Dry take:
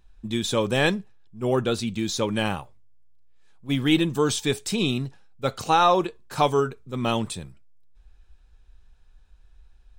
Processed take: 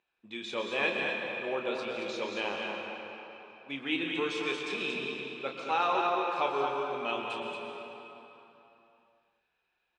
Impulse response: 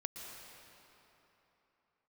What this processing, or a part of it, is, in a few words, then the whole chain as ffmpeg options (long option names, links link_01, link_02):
station announcement: -filter_complex "[0:a]highpass=400,lowpass=3600,equalizer=frequency=2500:width_type=o:width=0.38:gain=8.5,aecho=1:1:29.15|227.4:0.447|0.562[link_01];[1:a]atrim=start_sample=2205[link_02];[link_01][link_02]afir=irnorm=-1:irlink=0,volume=-7dB"